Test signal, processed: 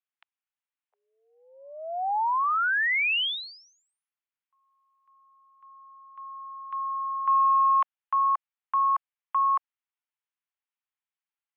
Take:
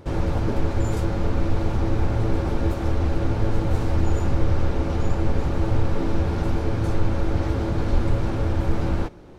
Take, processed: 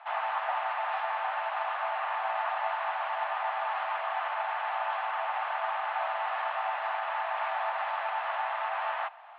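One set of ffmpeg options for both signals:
-af "acontrast=41,highpass=f=440:t=q:w=0.5412,highpass=f=440:t=q:w=1.307,lowpass=f=2900:t=q:w=0.5176,lowpass=f=2900:t=q:w=0.7071,lowpass=f=2900:t=q:w=1.932,afreqshift=330,volume=0.668"

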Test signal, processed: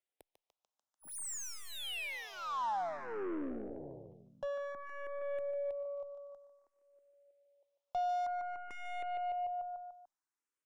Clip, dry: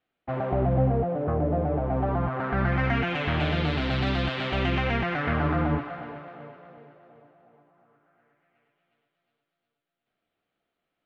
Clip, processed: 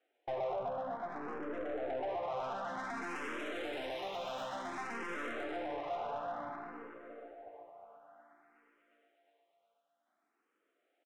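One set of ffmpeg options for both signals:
-filter_complex "[0:a]alimiter=limit=0.0794:level=0:latency=1:release=176,highpass=f=260:w=0.5412,highpass=f=260:w=1.3066,aresample=22050,aresample=44100,aecho=1:1:147|294|441|588|735|882|1029:0.316|0.183|0.106|0.0617|0.0358|0.0208|0.012,acompressor=threshold=0.01:ratio=2,aeval=exprs='(tanh(141*val(0)+0.65)-tanh(0.65))/141':c=same,equalizer=f=700:t=o:w=2.3:g=8.5,bandreject=f=4500:w=6.5,asplit=2[s0][s1];[s1]afreqshift=0.55[s2];[s0][s2]amix=inputs=2:normalize=1,volume=1.41"

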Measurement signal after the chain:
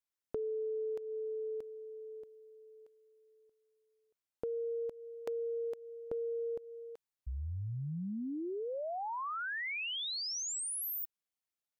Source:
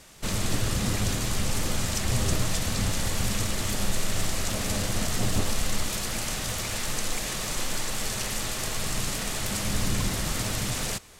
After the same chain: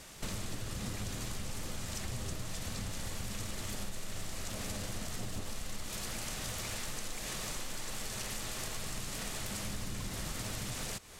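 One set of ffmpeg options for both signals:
-af "acompressor=threshold=0.0158:ratio=6"

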